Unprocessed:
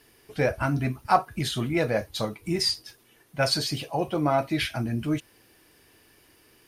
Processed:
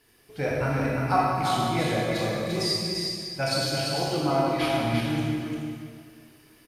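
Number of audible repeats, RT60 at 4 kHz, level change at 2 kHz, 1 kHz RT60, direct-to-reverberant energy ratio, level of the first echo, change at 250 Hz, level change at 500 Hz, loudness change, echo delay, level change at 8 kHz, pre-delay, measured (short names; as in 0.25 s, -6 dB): 1, 1.9 s, +1.0 dB, 2.1 s, -6.0 dB, -4.5 dB, +1.5 dB, +1.0 dB, +0.5 dB, 0.346 s, +0.5 dB, 19 ms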